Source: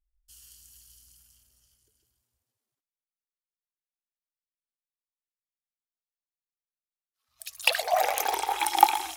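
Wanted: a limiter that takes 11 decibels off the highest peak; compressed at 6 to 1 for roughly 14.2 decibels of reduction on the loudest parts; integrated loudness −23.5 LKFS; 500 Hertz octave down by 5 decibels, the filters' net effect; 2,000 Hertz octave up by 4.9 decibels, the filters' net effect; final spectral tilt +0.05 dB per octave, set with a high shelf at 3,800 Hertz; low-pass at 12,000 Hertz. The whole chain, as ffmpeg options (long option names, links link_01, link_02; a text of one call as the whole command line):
ffmpeg -i in.wav -af "lowpass=12000,equalizer=frequency=500:width_type=o:gain=-8.5,equalizer=frequency=2000:width_type=o:gain=5,highshelf=frequency=3800:gain=5.5,acompressor=threshold=-30dB:ratio=6,volume=14.5dB,alimiter=limit=-9dB:level=0:latency=1" out.wav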